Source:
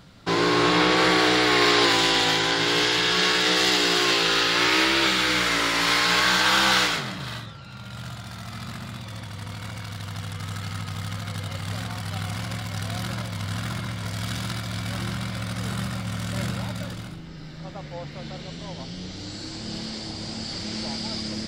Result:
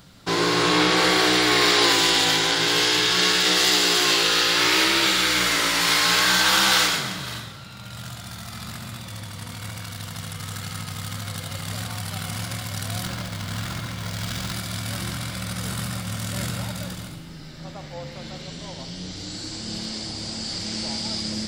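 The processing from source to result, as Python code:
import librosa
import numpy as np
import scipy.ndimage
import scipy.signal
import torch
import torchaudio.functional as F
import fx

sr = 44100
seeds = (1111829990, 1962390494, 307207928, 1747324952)

y = fx.high_shelf(x, sr, hz=6400.0, db=12.0)
y = fx.rev_schroeder(y, sr, rt60_s=1.6, comb_ms=29, drr_db=9.0)
y = fx.running_max(y, sr, window=3, at=(13.06, 14.53))
y = y * 10.0 ** (-1.0 / 20.0)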